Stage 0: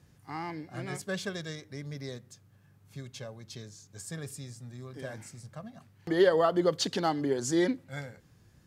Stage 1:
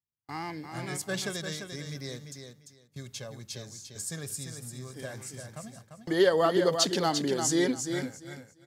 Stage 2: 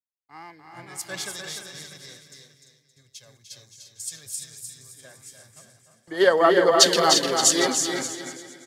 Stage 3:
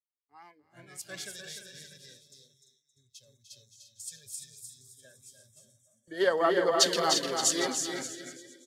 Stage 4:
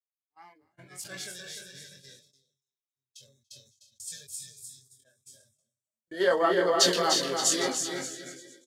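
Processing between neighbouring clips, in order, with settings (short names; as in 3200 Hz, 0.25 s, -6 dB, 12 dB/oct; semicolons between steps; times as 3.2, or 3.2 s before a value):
high shelf 4100 Hz +9.5 dB; gate -49 dBFS, range -41 dB; on a send: feedback echo 0.345 s, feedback 20%, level -7 dB
low shelf 430 Hz -12 dB; bouncing-ball echo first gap 0.3 s, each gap 0.9×, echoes 5; three-band expander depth 100%; gain +2 dB
spectral noise reduction 17 dB; gain -8 dB
gate -52 dBFS, range -31 dB; doubler 22 ms -5 dB; sustainer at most 100 dB/s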